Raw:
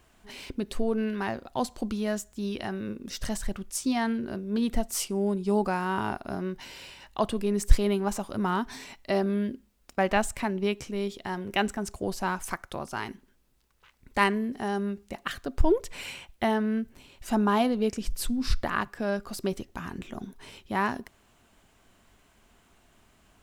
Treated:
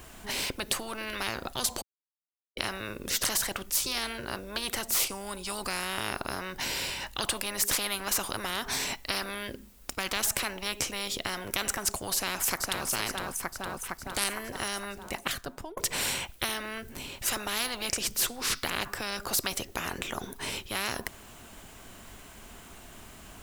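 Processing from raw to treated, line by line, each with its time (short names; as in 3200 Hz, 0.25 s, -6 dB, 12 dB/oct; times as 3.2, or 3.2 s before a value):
1.82–2.57 mute
12.14–12.86 echo throw 0.46 s, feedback 60%, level -7.5 dB
14.87–15.77 fade out
whole clip: high shelf 8600 Hz +8.5 dB; spectral compressor 10:1; gain -4.5 dB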